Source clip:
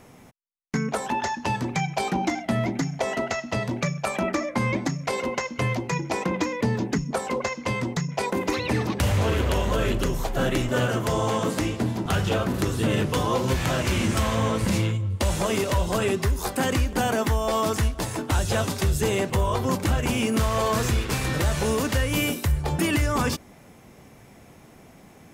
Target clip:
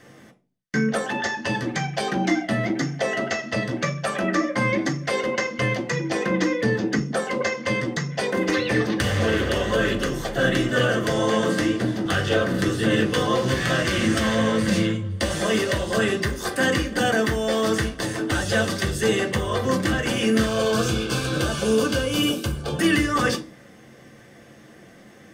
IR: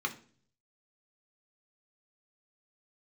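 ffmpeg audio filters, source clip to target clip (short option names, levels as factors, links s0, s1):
-filter_complex "[0:a]asettb=1/sr,asplit=3[s0][s1][s2];[s0]atrim=end=20.464[s3];[s1]atrim=start=20.46:end=22.8,asetpts=PTS-STARTPTS,afade=t=in:d=0.004:c=qsin,afade=t=out:st=2.336:d=0.004:c=qsin,asuperstop=centerf=1900:order=4:qfactor=3.4[s4];[s2]atrim=start=22.796[s5];[s3][s4]acrossfade=d=0.004:c1=hsin:c2=qsin[s6];[s6][s5]acrossfade=d=0.004:c1=qsin:c2=hsin[s7];[1:a]atrim=start_sample=2205,asetrate=61740,aresample=44100[s8];[s7][s8]afir=irnorm=-1:irlink=0,volume=1.26"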